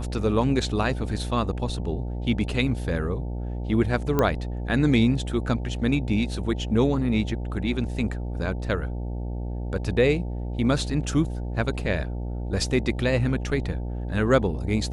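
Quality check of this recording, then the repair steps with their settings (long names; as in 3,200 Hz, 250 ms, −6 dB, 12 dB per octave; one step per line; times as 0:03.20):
mains buzz 60 Hz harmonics 15 −30 dBFS
0:04.19: click −9 dBFS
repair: click removal
hum removal 60 Hz, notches 15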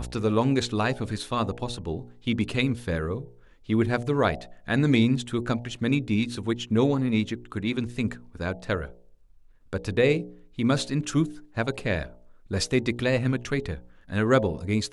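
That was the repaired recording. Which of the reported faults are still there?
0:04.19: click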